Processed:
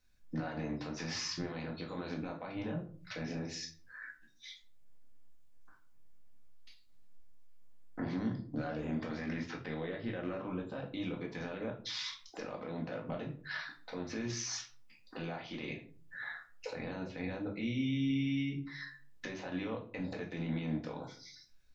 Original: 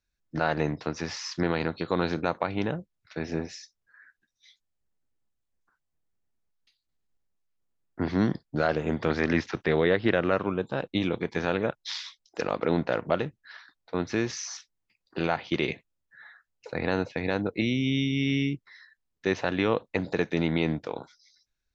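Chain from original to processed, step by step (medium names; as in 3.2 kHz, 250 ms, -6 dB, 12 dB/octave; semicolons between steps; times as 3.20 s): compression 6:1, threshold -41 dBFS, peak gain reduction 21 dB; peak limiter -36 dBFS, peak gain reduction 11 dB; simulated room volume 300 m³, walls furnished, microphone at 2 m; trim +4.5 dB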